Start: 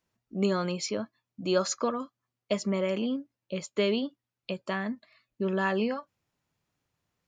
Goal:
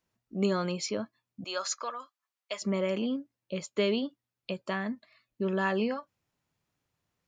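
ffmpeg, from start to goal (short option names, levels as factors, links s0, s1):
-filter_complex "[0:a]asettb=1/sr,asplit=3[s0][s1][s2];[s0]atrim=end=1.444[s3];[s1]atrim=start=1.44:end=2.62,asetpts=PTS-STARTPTS,afade=t=in:d=0.004:c=qsin,afade=t=out:st=1.176:d=0.004:c=qsin,highpass=890[s4];[s2]atrim=start=2.616[s5];[s3][s4]acrossfade=d=0.004:c1=hsin:c2=qsin[s6];[s6][s5]acrossfade=d=0.004:c1=qsin:c2=hsin,volume=0.891"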